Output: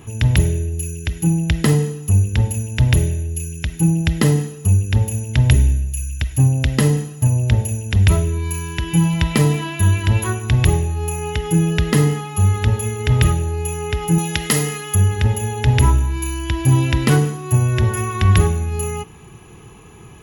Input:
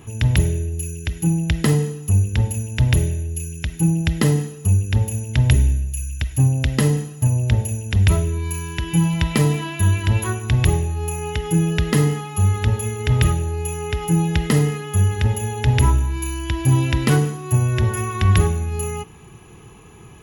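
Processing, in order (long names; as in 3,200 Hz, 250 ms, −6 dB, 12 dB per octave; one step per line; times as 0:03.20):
0:14.18–0:14.95: spectral tilt +2.5 dB per octave
level +2 dB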